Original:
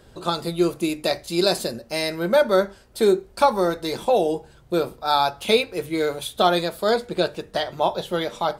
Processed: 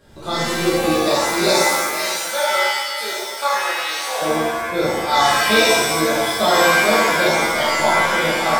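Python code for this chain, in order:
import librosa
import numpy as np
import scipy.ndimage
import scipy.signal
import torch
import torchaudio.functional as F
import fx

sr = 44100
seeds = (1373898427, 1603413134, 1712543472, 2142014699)

y = fx.highpass(x, sr, hz=1000.0, slope=12, at=(1.59, 4.22))
y = y + 10.0 ** (-16.0 / 20.0) * np.pad(y, (int(542 * sr / 1000.0), 0))[:len(y)]
y = fx.rev_shimmer(y, sr, seeds[0], rt60_s=1.1, semitones=7, shimmer_db=-2, drr_db=-8.5)
y = y * 10.0 ** (-5.5 / 20.0)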